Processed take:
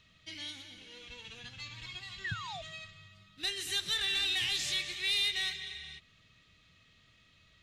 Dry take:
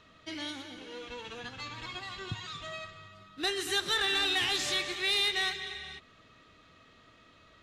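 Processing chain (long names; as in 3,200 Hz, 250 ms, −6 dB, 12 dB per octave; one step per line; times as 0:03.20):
sound drawn into the spectrogram fall, 0:02.24–0:02.62, 620–2,000 Hz −30 dBFS
flat-topped bell 610 Hz −12 dB 3 octaves
level −1.5 dB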